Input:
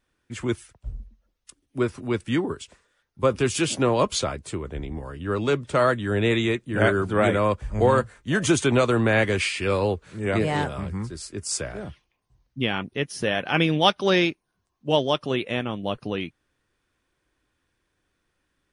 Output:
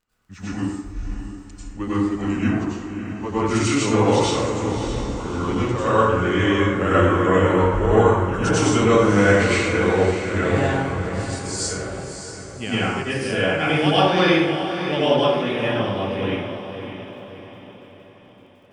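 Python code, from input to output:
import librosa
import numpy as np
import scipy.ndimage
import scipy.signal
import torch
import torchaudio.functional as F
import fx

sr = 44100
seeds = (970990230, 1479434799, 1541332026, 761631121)

y = fx.pitch_glide(x, sr, semitones=-3.5, runs='ending unshifted')
y = fx.echo_diffused(y, sr, ms=610, feedback_pct=47, wet_db=-9.0)
y = fx.dmg_crackle(y, sr, seeds[0], per_s=12.0, level_db=-48.0)
y = fx.rev_plate(y, sr, seeds[1], rt60_s=1.1, hf_ratio=0.5, predelay_ms=80, drr_db=-10.0)
y = y * librosa.db_to_amplitude(-5.5)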